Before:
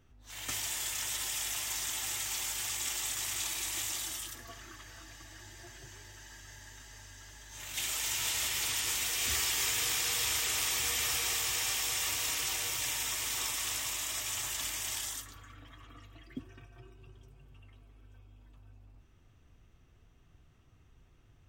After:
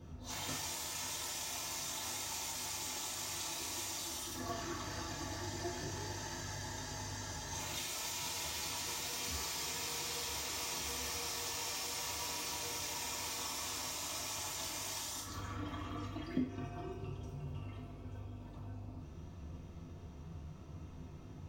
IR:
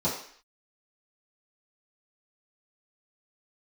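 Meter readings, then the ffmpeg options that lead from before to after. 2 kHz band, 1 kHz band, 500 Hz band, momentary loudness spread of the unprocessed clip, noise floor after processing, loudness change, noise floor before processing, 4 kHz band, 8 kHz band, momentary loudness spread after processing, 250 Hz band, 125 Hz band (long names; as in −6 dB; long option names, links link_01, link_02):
−7.5 dB, +0.5 dB, +3.5 dB, 21 LU, −50 dBFS, −8.5 dB, −62 dBFS, −6.0 dB, −7.0 dB, 12 LU, +8.0 dB, +5.5 dB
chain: -filter_complex "[0:a]acompressor=threshold=-48dB:ratio=5[link_01];[1:a]atrim=start_sample=2205[link_02];[link_01][link_02]afir=irnorm=-1:irlink=0,volume=1dB"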